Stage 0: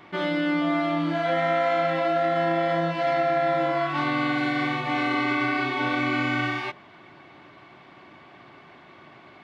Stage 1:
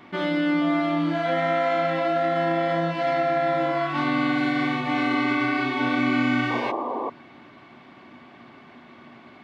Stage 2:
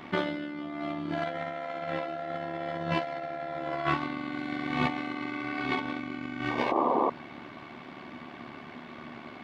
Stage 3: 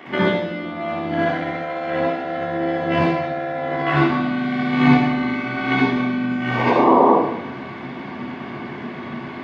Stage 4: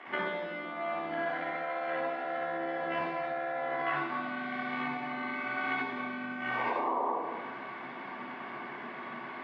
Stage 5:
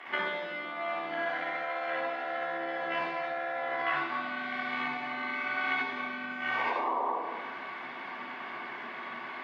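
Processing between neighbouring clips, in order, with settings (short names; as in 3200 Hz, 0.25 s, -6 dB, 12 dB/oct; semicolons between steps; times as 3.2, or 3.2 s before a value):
bell 240 Hz +13 dB 0.26 oct; painted sound noise, 6.5–7.1, 220–1200 Hz -28 dBFS
negative-ratio compressor -28 dBFS, ratio -0.5; AM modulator 73 Hz, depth 40%
reverb RT60 0.85 s, pre-delay 61 ms, DRR -4.5 dB; gain -2 dB
compressor 6:1, threshold -20 dBFS, peak gain reduction 11 dB; band-pass 1300 Hz, Q 0.76; gain -5 dB
tilt +2.5 dB/oct; gain +1 dB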